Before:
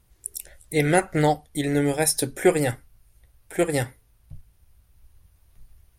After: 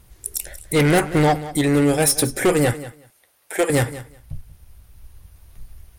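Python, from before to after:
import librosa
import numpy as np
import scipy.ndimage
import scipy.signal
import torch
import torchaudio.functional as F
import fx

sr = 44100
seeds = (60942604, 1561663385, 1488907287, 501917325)

p1 = fx.highpass(x, sr, hz=450.0, slope=12, at=(2.73, 3.7))
p2 = fx.rider(p1, sr, range_db=5, speed_s=2.0)
p3 = p1 + (p2 * 10.0 ** (-0.5 / 20.0))
p4 = 10.0 ** (-15.5 / 20.0) * np.tanh(p3 / 10.0 ** (-15.5 / 20.0))
p5 = fx.echo_feedback(p4, sr, ms=185, feedback_pct=15, wet_db=-15.5)
y = p5 * 10.0 ** (3.5 / 20.0)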